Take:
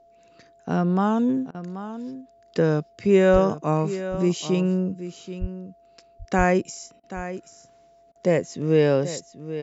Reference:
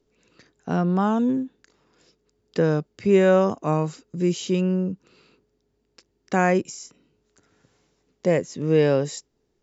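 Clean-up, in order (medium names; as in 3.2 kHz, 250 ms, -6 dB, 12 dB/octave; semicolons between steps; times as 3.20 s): band-stop 680 Hz, Q 30; de-plosive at 3.32/5.40/6.37 s; interpolate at 1.51/7.00/8.12 s, 34 ms; inverse comb 782 ms -12.5 dB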